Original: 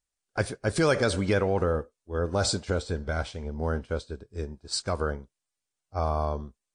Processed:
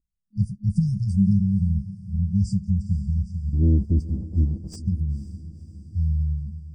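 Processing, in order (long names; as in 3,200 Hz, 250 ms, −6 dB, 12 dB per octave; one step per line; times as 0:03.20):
brick-wall band-stop 210–4,600 Hz
0:03.53–0:04.76: leveller curve on the samples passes 2
drawn EQ curve 160 Hz 0 dB, 280 Hz +12 dB, 2,000 Hz −24 dB
feedback delay with all-pass diffusion 501 ms, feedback 54%, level −15 dB
level +9 dB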